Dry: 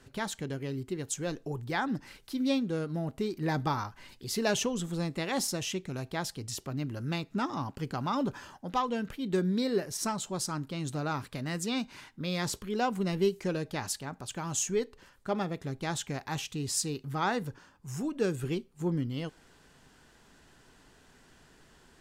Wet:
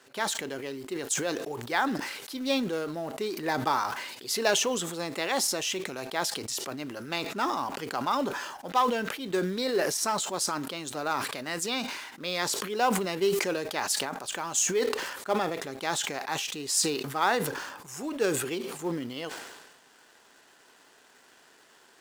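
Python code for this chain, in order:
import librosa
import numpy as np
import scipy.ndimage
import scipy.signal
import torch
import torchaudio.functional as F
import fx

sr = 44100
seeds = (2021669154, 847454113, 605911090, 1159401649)

p1 = scipy.signal.sosfilt(scipy.signal.butter(2, 430.0, 'highpass', fs=sr, output='sos'), x)
p2 = fx.quant_companded(p1, sr, bits=4)
p3 = p1 + (p2 * librosa.db_to_amplitude(-10.0))
p4 = fx.sustainer(p3, sr, db_per_s=44.0)
y = p4 * librosa.db_to_amplitude(2.5)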